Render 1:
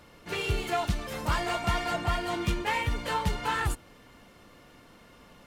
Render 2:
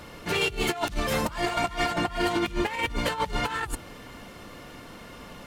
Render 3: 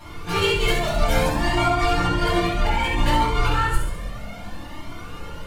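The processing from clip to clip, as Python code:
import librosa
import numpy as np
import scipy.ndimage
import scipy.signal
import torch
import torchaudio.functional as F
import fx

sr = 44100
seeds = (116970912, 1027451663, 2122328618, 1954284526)

y1 = fx.over_compress(x, sr, threshold_db=-33.0, ratio=-0.5)
y1 = F.gain(torch.from_numpy(y1), 6.0).numpy()
y2 = fx.echo_feedback(y1, sr, ms=68, feedback_pct=54, wet_db=-6)
y2 = fx.room_shoebox(y2, sr, seeds[0], volume_m3=720.0, walls='furnished', distance_m=8.0)
y2 = fx.comb_cascade(y2, sr, direction='rising', hz=0.62)
y2 = F.gain(torch.from_numpy(y2), -1.5).numpy()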